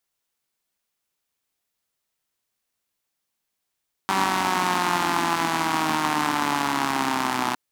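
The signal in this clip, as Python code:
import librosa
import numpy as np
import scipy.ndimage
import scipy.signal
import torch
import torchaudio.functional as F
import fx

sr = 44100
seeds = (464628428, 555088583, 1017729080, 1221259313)

y = fx.engine_four_rev(sr, seeds[0], length_s=3.46, rpm=5800, resonances_hz=(280.0, 900.0), end_rpm=3700)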